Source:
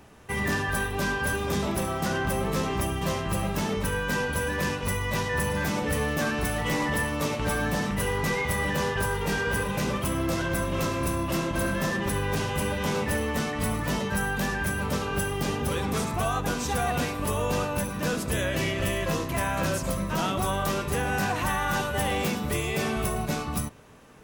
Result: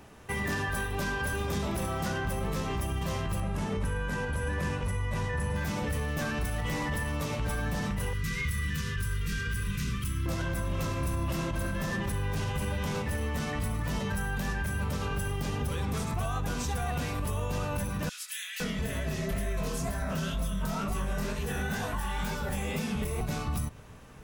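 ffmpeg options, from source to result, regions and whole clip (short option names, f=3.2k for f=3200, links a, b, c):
-filter_complex "[0:a]asettb=1/sr,asplit=3[a][b][c];[a]atrim=end=3.404[d];[b]atrim=start=3.4:end=5.56,asetpts=PTS-STARTPTS,afade=t=in:d=0.004:c=qsin,afade=t=out:st=2.156:d=0.004:c=qsin,lowpass=f=11k:w=0.5412,lowpass=f=11k:w=1.3066,equalizer=f=4.7k:w=0.73:g=-6.5[e];[c]atrim=start=5.556[f];[d][e]acrossfade=d=0.004:c1=hsin:c2=qsin[g];[g][f]acrossfade=d=0.004:c1=qsin:c2=hsin,asettb=1/sr,asplit=3[h][i][j];[h]atrim=end=8.134[k];[i]atrim=start=8.13:end=10.26,asetpts=PTS-STARTPTS,afade=t=in:d=0.004:c=qsin,afade=t=out:st=2.126:d=0.004:c=qsin,asuperstop=centerf=730:order=8:qfactor=1.2,equalizer=f=540:t=o:w=1.7:g=-13.5[l];[j]atrim=start=10.256[m];[k][l]acrossfade=d=0.004:c1=hsin:c2=qsin[n];[n][m]acrossfade=d=0.004:c1=qsin:c2=hsin,asettb=1/sr,asplit=3[o][p][q];[o]atrim=end=18.094[r];[p]atrim=start=18.09:end=23.21,asetpts=PTS-STARTPTS,afade=t=in:d=0.004:c=qsin,afade=t=out:st=5.116:d=0.004:c=qsin,aecho=1:1:4.6:0.63,atrim=end_sample=225792,acrossover=split=1900[s][t];[s]adelay=510[u];[u][t]amix=inputs=2:normalize=0,atrim=end_sample=225792,flanger=delay=17.5:depth=8:speed=2.1[v];[q]atrim=start=23.206[w];[r][v]acrossfade=d=0.004:c1=hsin:c2=qsin[x];[x][w]acrossfade=d=0.004:c1=qsin:c2=hsin,asubboost=boost=2.5:cutoff=160,alimiter=limit=-23dB:level=0:latency=1:release=134"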